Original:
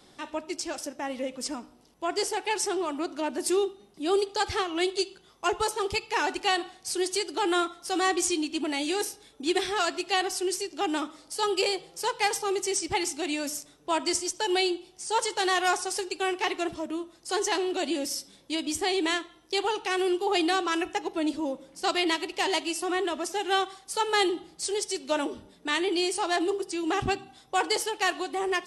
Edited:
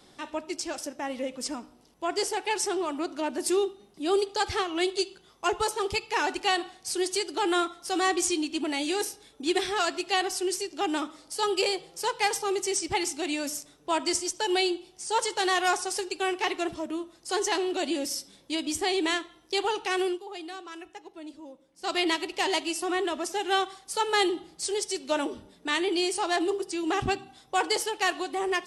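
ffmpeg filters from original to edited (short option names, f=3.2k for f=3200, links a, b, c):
-filter_complex "[0:a]asplit=3[a][b][c];[a]atrim=end=20.23,asetpts=PTS-STARTPTS,afade=t=out:st=20.02:d=0.21:silence=0.188365[d];[b]atrim=start=20.23:end=21.77,asetpts=PTS-STARTPTS,volume=-14.5dB[e];[c]atrim=start=21.77,asetpts=PTS-STARTPTS,afade=t=in:d=0.21:silence=0.188365[f];[d][e][f]concat=n=3:v=0:a=1"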